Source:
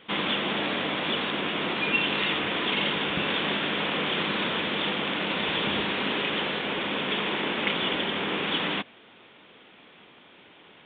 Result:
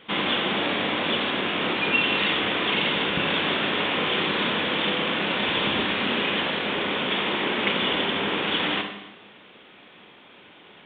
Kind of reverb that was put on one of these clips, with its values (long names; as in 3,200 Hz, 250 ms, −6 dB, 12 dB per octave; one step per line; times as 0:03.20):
four-comb reverb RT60 0.98 s, combs from 30 ms, DRR 5 dB
level +2 dB